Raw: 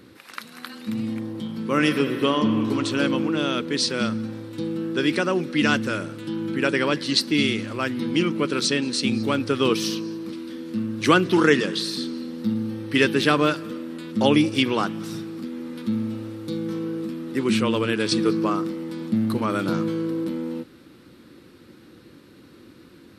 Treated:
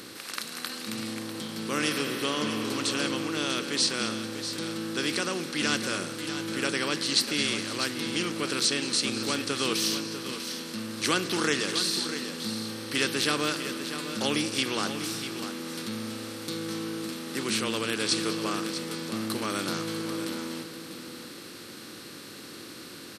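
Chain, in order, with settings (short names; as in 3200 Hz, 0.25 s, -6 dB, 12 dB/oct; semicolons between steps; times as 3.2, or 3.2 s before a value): per-bin compression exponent 0.6; pre-emphasis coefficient 0.8; on a send: echo 0.646 s -10 dB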